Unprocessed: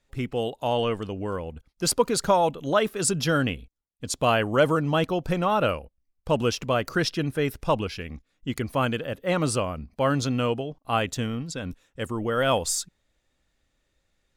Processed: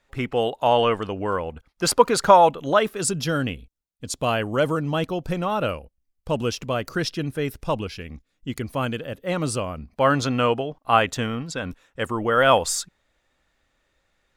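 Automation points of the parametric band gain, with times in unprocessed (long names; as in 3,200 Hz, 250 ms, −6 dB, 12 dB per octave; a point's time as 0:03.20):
parametric band 1,200 Hz 2.8 octaves
0:02.43 +9.5 dB
0:03.20 −2 dB
0:09.58 −2 dB
0:10.16 +8.5 dB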